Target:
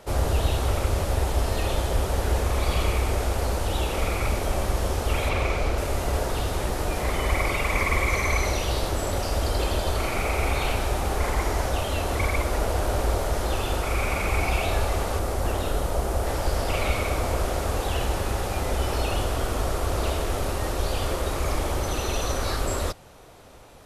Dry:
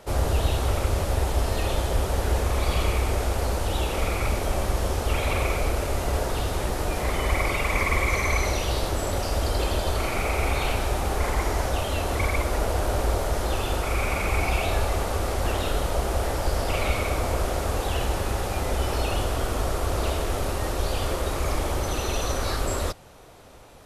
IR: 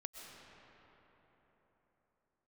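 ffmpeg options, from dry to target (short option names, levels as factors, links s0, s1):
-filter_complex "[0:a]asettb=1/sr,asplit=3[s0][s1][s2];[s0]atrim=end=5.294[s3];[s1]atrim=start=5.29:end=5.78,asetpts=PTS-STARTPTS,afade=t=in:d=0.004:c=qsin,afade=t=out:st=0.486:d=0.004:c=qsin,acrossover=split=6700[s4][s5];[s5]acompressor=threshold=0.00282:ratio=4:attack=1:release=60[s6];[s4][s6]amix=inputs=2:normalize=0[s7];[s2]atrim=start=5.776[s8];[s3][s7]acrossfade=d=0.004:c1=hsin:c2=qsin[s9];[s9][s8]acrossfade=d=0.004:c1=qsin:c2=hsin,asettb=1/sr,asplit=3[s10][s11][s12];[s10]atrim=end=15.194[s13];[s11]atrim=start=15.19:end=16.27,asetpts=PTS-STARTPTS,afade=t=in:d=0.004:c=qsin,afade=t=out:st=1.076:d=0.004:c=qsin,equalizer=f=3000:t=o:w=2.1:g=-4.5[s14];[s12]atrim=start=16.266[s15];[s13][s14]acrossfade=d=0.004:c1=hsin:c2=qsin[s16];[s16][s15]acrossfade=d=0.004:c1=qsin:c2=hsin"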